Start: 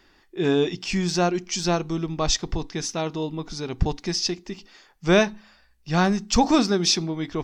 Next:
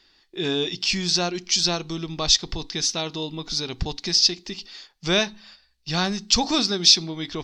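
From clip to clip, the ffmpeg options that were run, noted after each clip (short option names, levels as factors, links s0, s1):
-filter_complex "[0:a]asplit=2[s0][s1];[s1]acompressor=threshold=0.0355:ratio=6,volume=1.26[s2];[s0][s2]amix=inputs=2:normalize=0,agate=range=0.447:threshold=0.00501:ratio=16:detection=peak,equalizer=f=4200:w=1:g=15,volume=0.398"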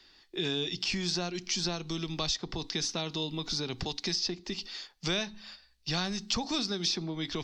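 -filter_complex "[0:a]acrossover=split=92|220|1800[s0][s1][s2][s3];[s0]acompressor=threshold=0.00708:ratio=4[s4];[s1]acompressor=threshold=0.00891:ratio=4[s5];[s2]acompressor=threshold=0.0158:ratio=4[s6];[s3]acompressor=threshold=0.0224:ratio=4[s7];[s4][s5][s6][s7]amix=inputs=4:normalize=0"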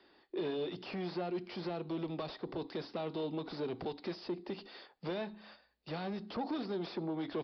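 -af "aresample=11025,asoftclip=type=tanh:threshold=0.0188,aresample=44100,bandpass=f=500:t=q:w=1:csg=0,volume=2.11"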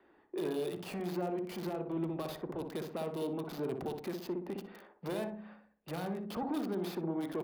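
-filter_complex "[0:a]acrossover=split=2500[s0][s1];[s1]acrusher=bits=7:mix=0:aa=0.000001[s2];[s0][s2]amix=inputs=2:normalize=0,asplit=2[s3][s4];[s4]adelay=61,lowpass=f=850:p=1,volume=0.708,asplit=2[s5][s6];[s6]adelay=61,lowpass=f=850:p=1,volume=0.48,asplit=2[s7][s8];[s8]adelay=61,lowpass=f=850:p=1,volume=0.48,asplit=2[s9][s10];[s10]adelay=61,lowpass=f=850:p=1,volume=0.48,asplit=2[s11][s12];[s12]adelay=61,lowpass=f=850:p=1,volume=0.48,asplit=2[s13][s14];[s14]adelay=61,lowpass=f=850:p=1,volume=0.48[s15];[s3][s5][s7][s9][s11][s13][s15]amix=inputs=7:normalize=0"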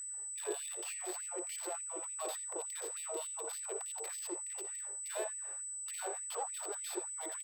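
-filter_complex "[0:a]aeval=exprs='val(0)+0.00891*sin(2*PI*8000*n/s)':c=same,asplit=2[s0][s1];[s1]adelay=83,lowpass=f=1300:p=1,volume=0.473,asplit=2[s2][s3];[s3]adelay=83,lowpass=f=1300:p=1,volume=0.37,asplit=2[s4][s5];[s5]adelay=83,lowpass=f=1300:p=1,volume=0.37,asplit=2[s6][s7];[s7]adelay=83,lowpass=f=1300:p=1,volume=0.37[s8];[s0][s2][s4][s6][s8]amix=inputs=5:normalize=0,afftfilt=real='re*gte(b*sr/1024,340*pow(1900/340,0.5+0.5*sin(2*PI*3.4*pts/sr)))':imag='im*gte(b*sr/1024,340*pow(1900/340,0.5+0.5*sin(2*PI*3.4*pts/sr)))':win_size=1024:overlap=0.75"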